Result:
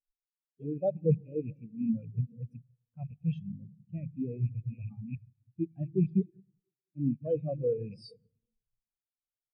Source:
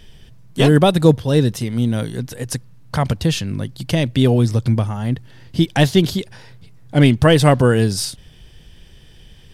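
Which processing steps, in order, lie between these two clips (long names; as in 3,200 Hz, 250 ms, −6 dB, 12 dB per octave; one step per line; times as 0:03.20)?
loose part that buzzes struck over −20 dBFS, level −10 dBFS
reversed playback
downward compressor 6 to 1, threshold −26 dBFS, peak gain reduction 18.5 dB
reversed playback
convolution reverb RT60 3.5 s, pre-delay 62 ms, DRR 5.5 dB
in parallel at −10 dB: comparator with hysteresis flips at −30 dBFS
on the sum: low-shelf EQ 170 Hz −10 dB
every bin expanded away from the loudest bin 4 to 1
level −3 dB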